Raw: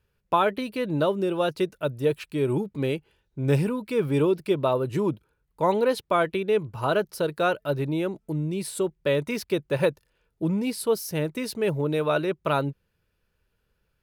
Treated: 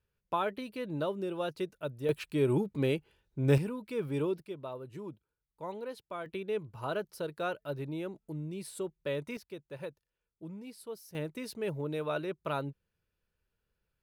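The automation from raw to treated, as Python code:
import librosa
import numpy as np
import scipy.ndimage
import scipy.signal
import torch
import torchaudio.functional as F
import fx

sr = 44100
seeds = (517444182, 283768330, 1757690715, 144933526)

y = fx.gain(x, sr, db=fx.steps((0.0, -10.0), (2.09, -3.0), (3.58, -10.0), (4.42, -18.0), (6.26, -11.0), (9.37, -19.0), (11.15, -10.0)))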